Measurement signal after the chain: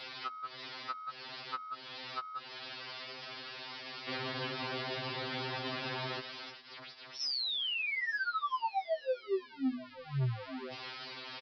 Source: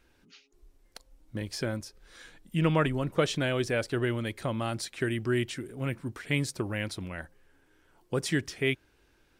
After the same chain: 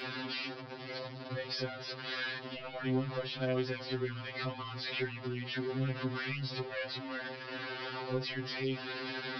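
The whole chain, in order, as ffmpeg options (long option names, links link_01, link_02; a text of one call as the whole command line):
ffmpeg -i in.wav -af "aeval=exprs='val(0)+0.5*0.0447*sgn(val(0))':channel_layout=same,highpass=frequency=140:width=0.5412,highpass=frequency=140:width=1.3066,aresample=11025,asoftclip=type=tanh:threshold=-18dB,aresample=44100,bandreject=frequency=50:width_type=h:width=6,bandreject=frequency=100:width_type=h:width=6,bandreject=frequency=150:width_type=h:width=6,bandreject=frequency=200:width_type=h:width=6,bandreject=frequency=250:width_type=h:width=6,acompressor=threshold=-32dB:ratio=6,afftfilt=real='re*2.45*eq(mod(b,6),0)':imag='im*2.45*eq(mod(b,6),0)':win_size=2048:overlap=0.75" out.wav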